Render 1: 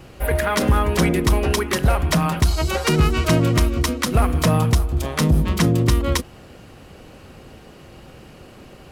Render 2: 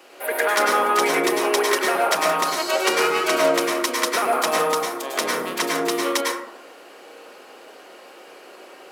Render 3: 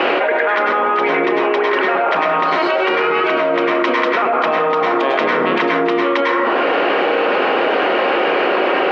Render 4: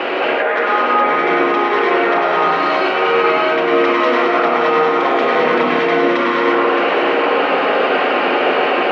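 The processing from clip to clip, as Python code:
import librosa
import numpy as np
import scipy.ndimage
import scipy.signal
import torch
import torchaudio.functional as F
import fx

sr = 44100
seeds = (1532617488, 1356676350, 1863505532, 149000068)

y1 = scipy.signal.sosfilt(scipy.signal.bessel(6, 500.0, 'highpass', norm='mag', fs=sr, output='sos'), x)
y1 = fx.rev_plate(y1, sr, seeds[0], rt60_s=0.75, hf_ratio=0.35, predelay_ms=90, drr_db=-2.5)
y2 = scipy.signal.sosfilt(scipy.signal.butter(4, 2900.0, 'lowpass', fs=sr, output='sos'), y1)
y2 = fx.env_flatten(y2, sr, amount_pct=100)
y3 = y2 + 10.0 ** (-6.0 / 20.0) * np.pad(y2, (int(618 * sr / 1000.0), 0))[:len(y2)]
y3 = fx.rev_gated(y3, sr, seeds[1], gate_ms=250, shape='rising', drr_db=-3.0)
y3 = y3 * 10.0 ** (-4.5 / 20.0)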